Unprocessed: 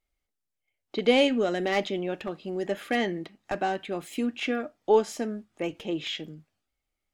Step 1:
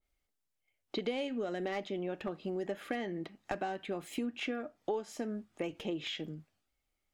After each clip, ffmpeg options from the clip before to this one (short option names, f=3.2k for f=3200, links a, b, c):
-af "acompressor=threshold=-33dB:ratio=6,adynamicequalizer=threshold=0.00224:dfrequency=2100:dqfactor=0.7:tfrequency=2100:tqfactor=0.7:attack=5:release=100:ratio=0.375:range=2.5:mode=cutabove:tftype=highshelf"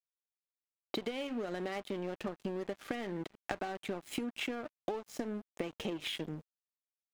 -af "acompressor=threshold=-42dB:ratio=5,aeval=exprs='sgn(val(0))*max(abs(val(0))-0.00211,0)':c=same,volume=9dB"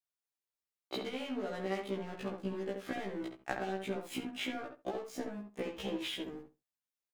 -filter_complex "[0:a]asplit=2[a][b];[b]adelay=68,lowpass=f=2.1k:p=1,volume=-4.5dB,asplit=2[c][d];[d]adelay=68,lowpass=f=2.1k:p=1,volume=0.17,asplit=2[e][f];[f]adelay=68,lowpass=f=2.1k:p=1,volume=0.17[g];[c][e][g]amix=inputs=3:normalize=0[h];[a][h]amix=inputs=2:normalize=0,afftfilt=real='re*1.73*eq(mod(b,3),0)':imag='im*1.73*eq(mod(b,3),0)':win_size=2048:overlap=0.75,volume=1.5dB"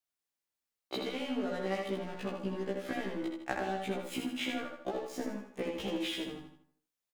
-af "aecho=1:1:80|160|240|320|400:0.501|0.2|0.0802|0.0321|0.0128,volume=1.5dB"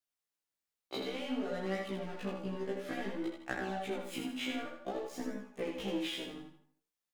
-af "flanger=delay=16:depth=7.1:speed=0.56,volume=1dB"